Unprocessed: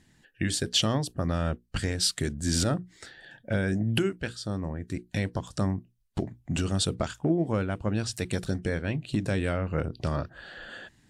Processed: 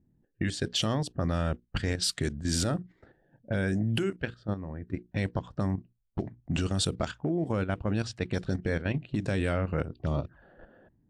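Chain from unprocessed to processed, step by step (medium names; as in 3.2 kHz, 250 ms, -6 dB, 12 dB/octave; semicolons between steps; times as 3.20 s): 9.93–10.42 s: touch-sensitive flanger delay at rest 3.5 ms, full sweep at -25.5 dBFS; level-controlled noise filter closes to 390 Hz, open at -22.5 dBFS; level held to a coarse grid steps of 10 dB; trim +2.5 dB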